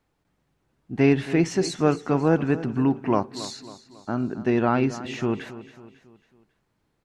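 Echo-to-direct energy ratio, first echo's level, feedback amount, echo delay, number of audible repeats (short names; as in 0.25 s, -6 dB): -14.0 dB, -15.0 dB, 46%, 0.274 s, 3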